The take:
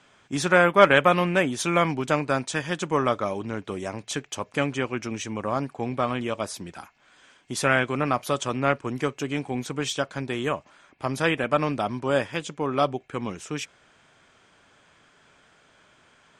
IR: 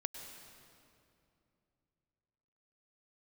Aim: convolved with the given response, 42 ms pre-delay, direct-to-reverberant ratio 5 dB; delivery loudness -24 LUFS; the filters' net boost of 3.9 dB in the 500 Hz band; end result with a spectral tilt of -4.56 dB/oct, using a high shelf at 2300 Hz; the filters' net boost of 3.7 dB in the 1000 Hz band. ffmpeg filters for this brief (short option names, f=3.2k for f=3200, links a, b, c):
-filter_complex "[0:a]equalizer=f=500:t=o:g=3.5,equalizer=f=1k:t=o:g=5.5,highshelf=f=2.3k:g=-6,asplit=2[a][b];[1:a]atrim=start_sample=2205,adelay=42[c];[b][c]afir=irnorm=-1:irlink=0,volume=-4dB[d];[a][d]amix=inputs=2:normalize=0,volume=-2.5dB"